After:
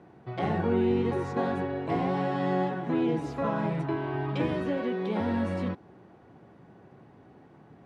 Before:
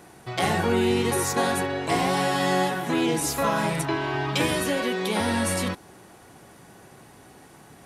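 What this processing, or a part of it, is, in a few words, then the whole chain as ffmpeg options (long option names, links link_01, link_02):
phone in a pocket: -af "highpass=88,lowpass=3700,tiltshelf=frequency=640:gain=4,highshelf=frequency=2400:gain=-9,volume=-4.5dB"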